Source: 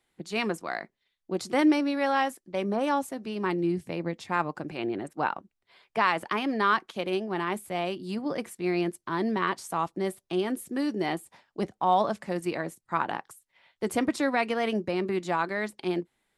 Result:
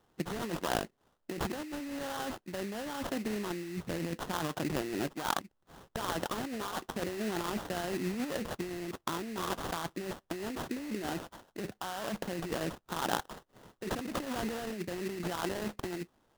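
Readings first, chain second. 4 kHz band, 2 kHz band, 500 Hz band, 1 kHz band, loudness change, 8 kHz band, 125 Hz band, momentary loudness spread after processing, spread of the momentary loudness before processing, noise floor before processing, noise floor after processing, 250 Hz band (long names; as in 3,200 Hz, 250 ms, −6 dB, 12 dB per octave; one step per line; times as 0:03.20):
−3.0 dB, −8.5 dB, −8.0 dB, −9.5 dB, −7.5 dB, +1.5 dB, −3.0 dB, 6 LU, 9 LU, −80 dBFS, −75 dBFS, −7.5 dB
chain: brickwall limiter −20 dBFS, peak gain reduction 10.5 dB
compressor whose output falls as the input rises −36 dBFS, ratio −1
sample-rate reduction 2,300 Hz, jitter 20%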